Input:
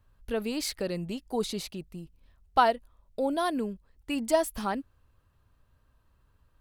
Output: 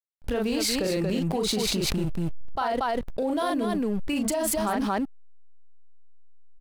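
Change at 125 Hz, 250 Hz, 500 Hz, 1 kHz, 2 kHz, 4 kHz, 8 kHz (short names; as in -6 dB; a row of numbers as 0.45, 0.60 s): +11.0, +7.0, +2.5, 0.0, +2.5, +7.5, +9.0 dB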